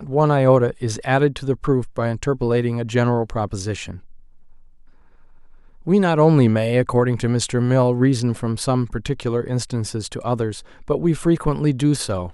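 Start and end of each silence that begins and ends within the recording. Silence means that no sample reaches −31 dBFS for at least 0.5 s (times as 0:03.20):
0:03.97–0:05.87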